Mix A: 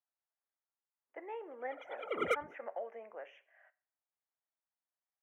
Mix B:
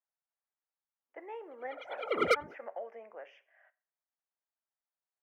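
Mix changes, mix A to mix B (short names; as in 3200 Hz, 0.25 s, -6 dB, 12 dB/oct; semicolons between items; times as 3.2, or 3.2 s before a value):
background +5.5 dB; master: remove Butterworth band-stop 4600 Hz, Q 1.9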